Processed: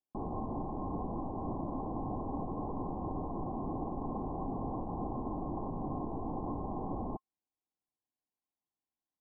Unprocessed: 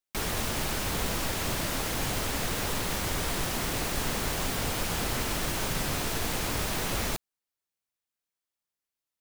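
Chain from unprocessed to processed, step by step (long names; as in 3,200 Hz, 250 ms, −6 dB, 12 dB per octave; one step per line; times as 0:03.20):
brickwall limiter −24 dBFS, peak gain reduction 6.5 dB
Chebyshev low-pass with heavy ripple 1,100 Hz, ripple 9 dB
level +4.5 dB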